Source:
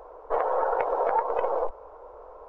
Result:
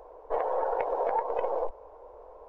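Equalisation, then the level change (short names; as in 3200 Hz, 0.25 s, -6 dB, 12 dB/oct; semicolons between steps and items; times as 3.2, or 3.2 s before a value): bell 1300 Hz -10 dB 0.43 oct; -2.5 dB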